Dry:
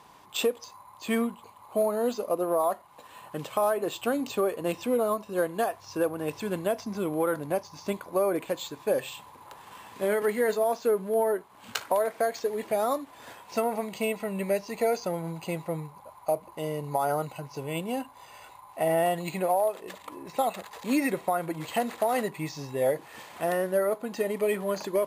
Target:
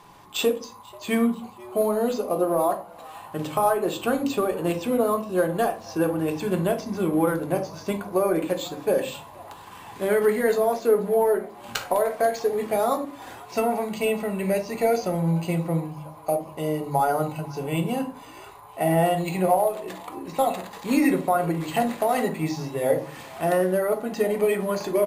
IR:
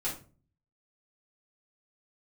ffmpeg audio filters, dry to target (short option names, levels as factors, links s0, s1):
-filter_complex "[0:a]asplit=5[s0][s1][s2][s3][s4];[s1]adelay=488,afreqshift=140,volume=0.0668[s5];[s2]adelay=976,afreqshift=280,volume=0.0412[s6];[s3]adelay=1464,afreqshift=420,volume=0.0257[s7];[s4]adelay=1952,afreqshift=560,volume=0.0158[s8];[s0][s5][s6][s7][s8]amix=inputs=5:normalize=0,asplit=2[s9][s10];[1:a]atrim=start_sample=2205,lowshelf=f=250:g=10.5[s11];[s10][s11]afir=irnorm=-1:irlink=0,volume=0.473[s12];[s9][s12]amix=inputs=2:normalize=0"